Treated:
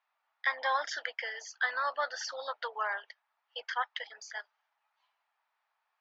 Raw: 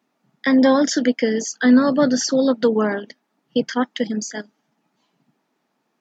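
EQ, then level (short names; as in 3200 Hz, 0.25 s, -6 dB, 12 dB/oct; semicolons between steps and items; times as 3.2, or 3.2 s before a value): inverse Chebyshev high-pass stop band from 250 Hz, stop band 60 dB; air absorption 190 m; high shelf 5700 Hz -5 dB; -3.5 dB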